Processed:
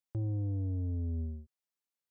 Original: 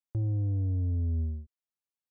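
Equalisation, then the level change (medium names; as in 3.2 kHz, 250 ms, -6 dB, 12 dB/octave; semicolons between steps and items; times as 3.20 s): bass shelf 90 Hz -11 dB; 0.0 dB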